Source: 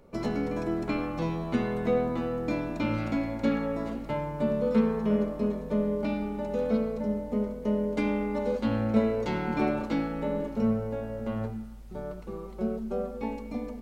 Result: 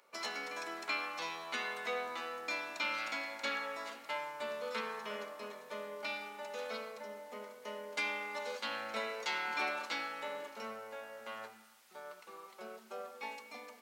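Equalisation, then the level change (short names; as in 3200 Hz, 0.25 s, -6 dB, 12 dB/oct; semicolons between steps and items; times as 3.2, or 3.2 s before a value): HPF 1300 Hz 12 dB/oct; dynamic EQ 5100 Hz, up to +4 dB, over -56 dBFS, Q 0.72; +2.5 dB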